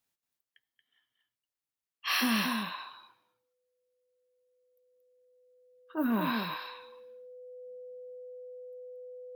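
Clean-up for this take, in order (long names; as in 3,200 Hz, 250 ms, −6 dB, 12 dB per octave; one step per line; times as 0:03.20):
clipped peaks rebuilt −20 dBFS
notch filter 500 Hz, Q 30
echo removal 229 ms −5.5 dB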